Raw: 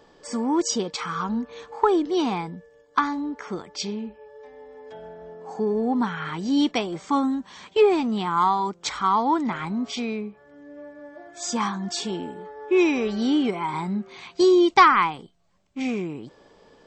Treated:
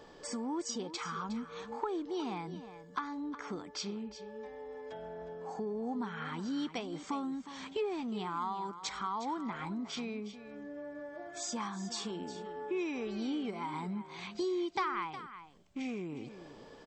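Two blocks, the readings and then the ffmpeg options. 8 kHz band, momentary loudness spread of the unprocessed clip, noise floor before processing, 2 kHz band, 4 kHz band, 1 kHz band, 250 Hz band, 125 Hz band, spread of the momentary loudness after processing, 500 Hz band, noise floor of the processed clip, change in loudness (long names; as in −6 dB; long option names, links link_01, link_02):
−10.0 dB, 20 LU, −56 dBFS, −14.5 dB, −12.0 dB, −15.5 dB, −13.5 dB, −10.5 dB, 10 LU, −14.5 dB, −54 dBFS, −15.0 dB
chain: -filter_complex "[0:a]acompressor=threshold=-42dB:ratio=2.5,asplit=2[link_01][link_02];[link_02]aecho=0:1:362:0.237[link_03];[link_01][link_03]amix=inputs=2:normalize=0"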